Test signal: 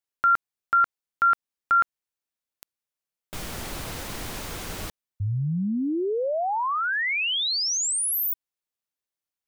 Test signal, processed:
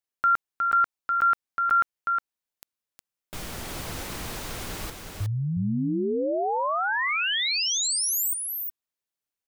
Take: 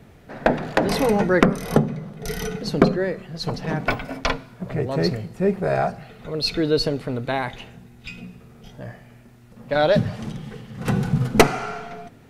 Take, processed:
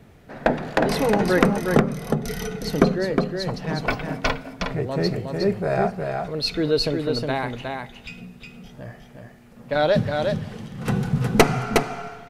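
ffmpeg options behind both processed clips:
ffmpeg -i in.wav -af "aecho=1:1:362:0.596,volume=-1.5dB" out.wav

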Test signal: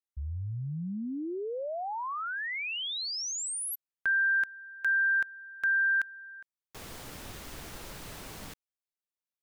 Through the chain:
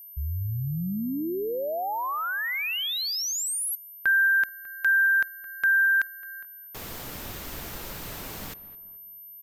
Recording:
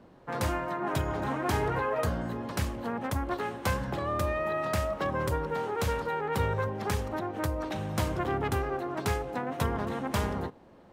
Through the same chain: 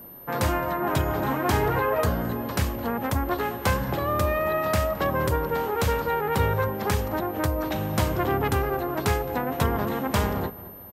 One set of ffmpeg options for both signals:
ffmpeg -i in.wav -filter_complex "[0:a]asplit=2[link_01][link_02];[link_02]adelay=216,lowpass=frequency=1700:poles=1,volume=-16dB,asplit=2[link_03][link_04];[link_04]adelay=216,lowpass=frequency=1700:poles=1,volume=0.42,asplit=2[link_05][link_06];[link_06]adelay=216,lowpass=frequency=1700:poles=1,volume=0.42,asplit=2[link_07][link_08];[link_08]adelay=216,lowpass=frequency=1700:poles=1,volume=0.42[link_09];[link_03][link_05][link_07][link_09]amix=inputs=4:normalize=0[link_10];[link_01][link_10]amix=inputs=2:normalize=0,aeval=exprs='val(0)+0.00398*sin(2*PI*13000*n/s)':channel_layout=same,volume=5.5dB" out.wav

